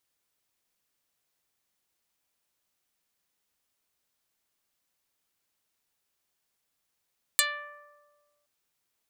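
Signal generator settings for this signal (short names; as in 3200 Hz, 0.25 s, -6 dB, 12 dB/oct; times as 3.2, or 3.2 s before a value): plucked string D5, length 1.07 s, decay 1.64 s, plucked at 0.11, dark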